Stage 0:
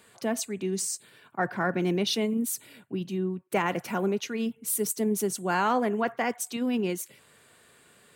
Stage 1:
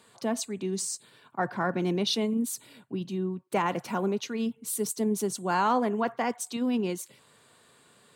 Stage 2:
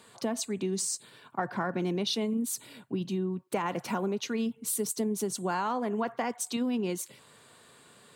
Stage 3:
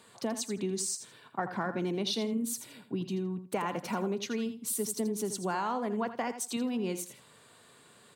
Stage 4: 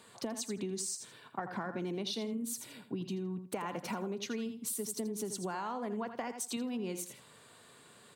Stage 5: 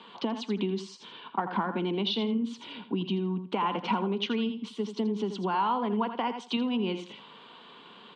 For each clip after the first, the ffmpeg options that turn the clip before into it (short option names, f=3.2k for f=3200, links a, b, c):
-af "equalizer=f=125:t=o:w=1:g=7,equalizer=f=250:t=o:w=1:g=6,equalizer=f=500:t=o:w=1:g=4,equalizer=f=1k:t=o:w=1:g=9,equalizer=f=4k:t=o:w=1:g=8,equalizer=f=8k:t=o:w=1:g=5,volume=-8dB"
-af "acompressor=threshold=-30dB:ratio=6,volume=3dB"
-af "aecho=1:1:82|164:0.282|0.0479,volume=-2dB"
-af "acompressor=threshold=-34dB:ratio=6"
-af "highpass=f=180:w=0.5412,highpass=f=180:w=1.3066,equalizer=f=200:t=q:w=4:g=4,equalizer=f=610:t=q:w=4:g=-6,equalizer=f=960:t=q:w=4:g=8,equalizer=f=1.8k:t=q:w=4:g=-6,equalizer=f=3.1k:t=q:w=4:g=10,lowpass=f=3.7k:w=0.5412,lowpass=f=3.7k:w=1.3066,volume=7.5dB"